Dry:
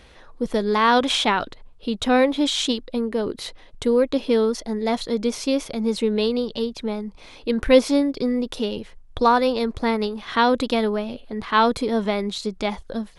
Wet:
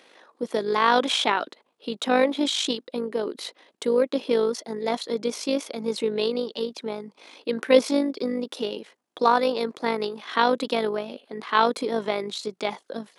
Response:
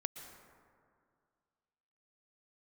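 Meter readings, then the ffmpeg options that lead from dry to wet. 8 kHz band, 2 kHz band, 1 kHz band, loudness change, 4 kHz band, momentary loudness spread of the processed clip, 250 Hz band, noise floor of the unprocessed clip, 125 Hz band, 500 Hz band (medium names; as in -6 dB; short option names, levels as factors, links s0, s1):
-2.5 dB, -2.5 dB, -2.5 dB, -3.0 dB, -2.5 dB, 15 LU, -6.5 dB, -47 dBFS, -8.5 dB, -2.5 dB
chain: -af "highpass=f=260:w=0.5412,highpass=f=260:w=1.3066,tremolo=f=51:d=0.519"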